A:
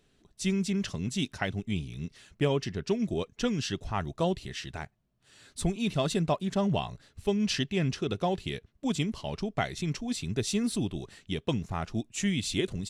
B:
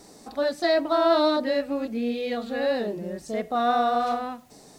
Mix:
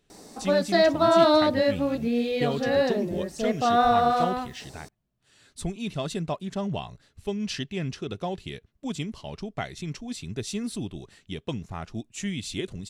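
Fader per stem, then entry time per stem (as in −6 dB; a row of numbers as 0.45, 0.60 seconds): −2.5, +2.0 decibels; 0.00, 0.10 seconds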